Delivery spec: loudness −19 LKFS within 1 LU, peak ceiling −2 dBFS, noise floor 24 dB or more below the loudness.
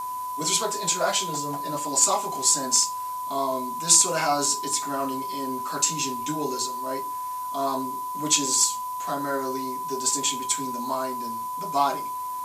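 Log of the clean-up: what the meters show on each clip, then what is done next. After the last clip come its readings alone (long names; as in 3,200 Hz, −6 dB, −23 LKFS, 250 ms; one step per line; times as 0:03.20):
interfering tone 1,000 Hz; level of the tone −29 dBFS; background noise floor −32 dBFS; target noise floor −49 dBFS; integrated loudness −24.5 LKFS; sample peak −4.0 dBFS; target loudness −19.0 LKFS
→ notch filter 1,000 Hz, Q 30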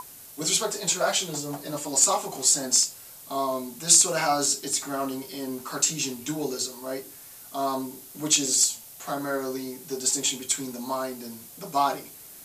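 interfering tone none found; background noise floor −46 dBFS; target noise floor −49 dBFS
→ broadband denoise 6 dB, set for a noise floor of −46 dBFS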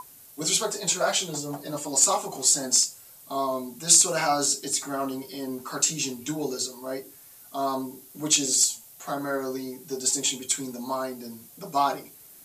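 background noise floor −50 dBFS; integrated loudness −24.5 LKFS; sample peak −4.5 dBFS; target loudness −19.0 LKFS
→ level +5.5 dB
brickwall limiter −2 dBFS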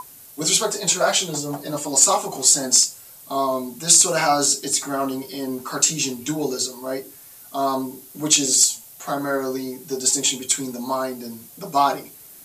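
integrated loudness −19.5 LKFS; sample peak −2.0 dBFS; background noise floor −45 dBFS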